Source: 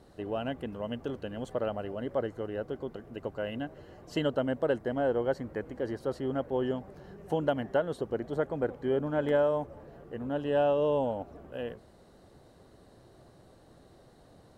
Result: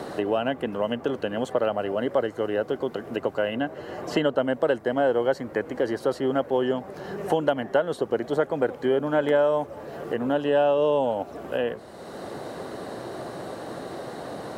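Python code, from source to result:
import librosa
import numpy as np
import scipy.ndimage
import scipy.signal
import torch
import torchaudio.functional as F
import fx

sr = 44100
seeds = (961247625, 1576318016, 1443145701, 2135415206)

y = scipy.signal.sosfilt(scipy.signal.butter(2, 71.0, 'highpass', fs=sr, output='sos'), x)
y = fx.low_shelf(y, sr, hz=210.0, db=-11.5)
y = fx.band_squash(y, sr, depth_pct=70)
y = F.gain(torch.from_numpy(y), 9.0).numpy()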